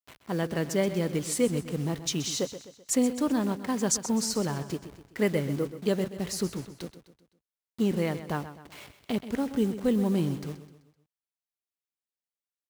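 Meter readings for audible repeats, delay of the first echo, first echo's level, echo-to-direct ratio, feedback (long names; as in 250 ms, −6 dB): 4, 128 ms, −12.5 dB, −11.5 dB, 45%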